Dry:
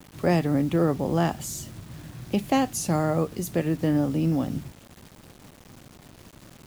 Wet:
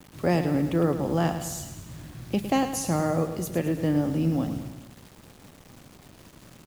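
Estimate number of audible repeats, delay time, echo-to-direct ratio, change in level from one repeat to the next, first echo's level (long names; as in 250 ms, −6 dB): 4, 107 ms, −8.5 dB, −5.0 dB, −10.0 dB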